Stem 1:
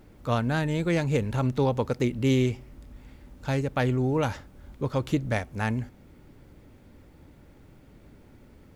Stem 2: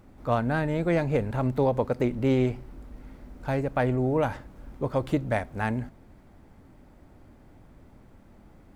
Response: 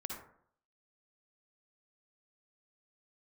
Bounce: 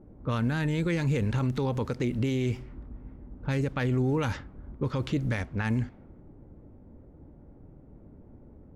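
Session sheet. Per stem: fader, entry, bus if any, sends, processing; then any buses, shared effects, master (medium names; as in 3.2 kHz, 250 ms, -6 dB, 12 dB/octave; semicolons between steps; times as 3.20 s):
+1.0 dB, 0.00 s, no send, none
-3.0 dB, 0.00 s, no send, harmonic tremolo 7.2 Hz, crossover 660 Hz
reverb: none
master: level-controlled noise filter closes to 600 Hz, open at -20 dBFS; peak limiter -19.5 dBFS, peak gain reduction 10.5 dB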